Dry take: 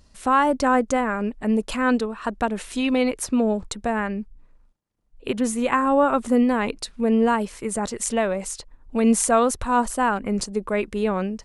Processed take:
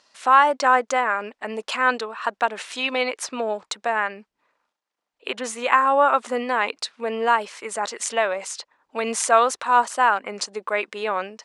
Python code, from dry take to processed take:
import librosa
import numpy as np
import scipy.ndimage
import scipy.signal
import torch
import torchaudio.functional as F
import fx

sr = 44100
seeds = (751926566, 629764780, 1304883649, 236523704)

y = fx.bandpass_edges(x, sr, low_hz=740.0, high_hz=5900.0)
y = y * librosa.db_to_amplitude(5.5)